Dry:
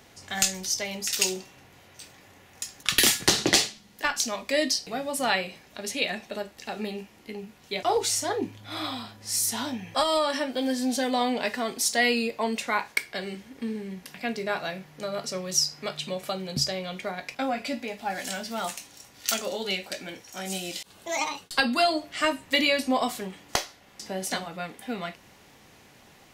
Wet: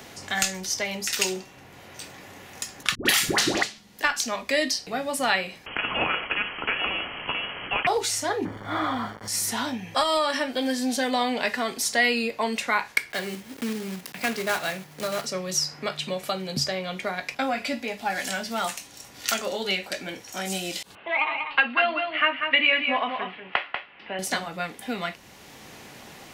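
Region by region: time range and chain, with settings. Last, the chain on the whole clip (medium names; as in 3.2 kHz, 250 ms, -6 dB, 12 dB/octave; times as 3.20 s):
2.95–3.63 s: doubling 38 ms -9 dB + phase dispersion highs, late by 107 ms, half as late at 730 Hz
5.66–7.87 s: frequency inversion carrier 3.1 kHz + spectrum-flattening compressor 2:1
8.45–9.28 s: waveshaping leveller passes 2 + word length cut 6-bit, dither none + Savitzky-Golay filter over 41 samples
13.10–15.27 s: block-companded coder 3-bit + high-pass 79 Hz
20.95–24.19 s: elliptic low-pass 2.8 kHz, stop band 60 dB + tilt EQ +3.5 dB/octave + delay 191 ms -7.5 dB
whole clip: dynamic bell 1.6 kHz, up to +5 dB, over -39 dBFS, Q 0.77; three bands compressed up and down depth 40%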